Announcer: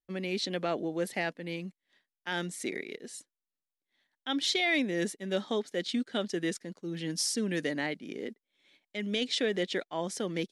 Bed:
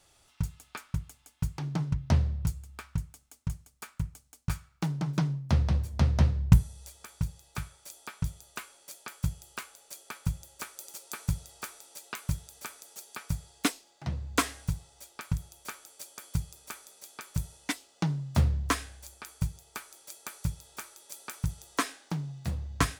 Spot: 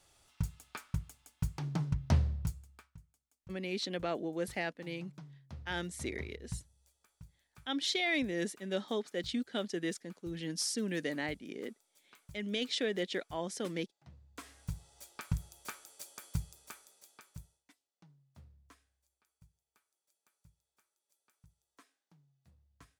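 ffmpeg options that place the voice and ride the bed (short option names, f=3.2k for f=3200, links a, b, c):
-filter_complex "[0:a]adelay=3400,volume=-4dB[a];[1:a]volume=16dB,afade=t=out:st=2.29:d=0.63:silence=0.105925,afade=t=in:st=14.4:d=0.6:silence=0.105925,afade=t=out:st=16.12:d=1.52:silence=0.0316228[b];[a][b]amix=inputs=2:normalize=0"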